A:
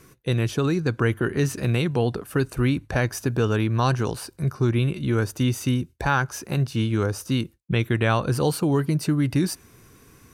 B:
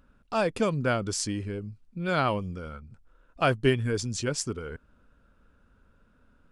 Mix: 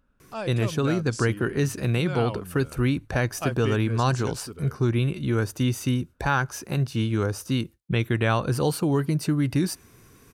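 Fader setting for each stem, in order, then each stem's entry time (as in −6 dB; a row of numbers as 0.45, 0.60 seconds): −1.5, −7.0 decibels; 0.20, 0.00 seconds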